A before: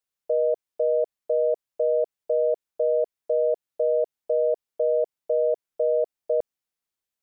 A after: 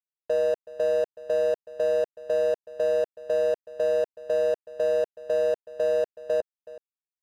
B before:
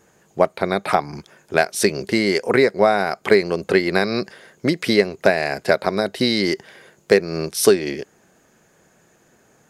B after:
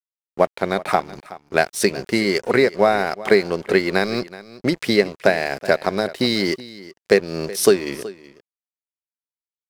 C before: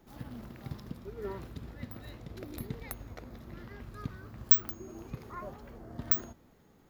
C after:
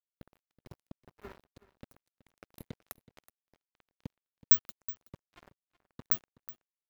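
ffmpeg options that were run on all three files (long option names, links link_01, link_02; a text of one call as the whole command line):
ffmpeg -i in.wav -af "bandreject=frequency=50:width_type=h:width=6,bandreject=frequency=100:width_type=h:width=6,bandreject=frequency=150:width_type=h:width=6,aeval=exprs='sgn(val(0))*max(abs(val(0))-0.015,0)':channel_layout=same,aecho=1:1:374:0.126" out.wav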